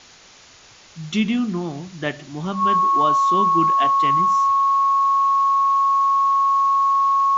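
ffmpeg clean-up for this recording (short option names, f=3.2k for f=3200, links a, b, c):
-af "bandreject=f=1.1k:w=30,afwtdn=0.0071"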